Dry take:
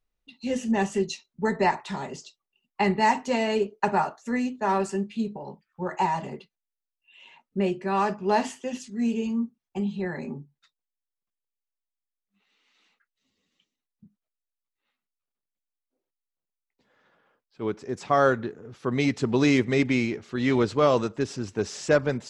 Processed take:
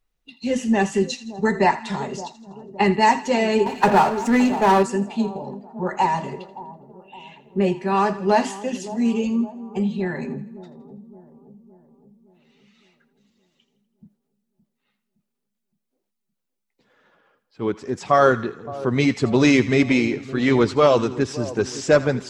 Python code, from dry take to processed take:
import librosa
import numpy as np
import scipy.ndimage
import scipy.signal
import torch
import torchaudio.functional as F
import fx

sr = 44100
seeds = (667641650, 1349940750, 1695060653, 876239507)

y = fx.spec_quant(x, sr, step_db=15)
y = fx.echo_split(y, sr, split_hz=970.0, low_ms=566, high_ms=82, feedback_pct=52, wet_db=-15.5)
y = fx.power_curve(y, sr, exponent=0.7, at=(3.66, 4.83))
y = y * librosa.db_to_amplitude(5.5)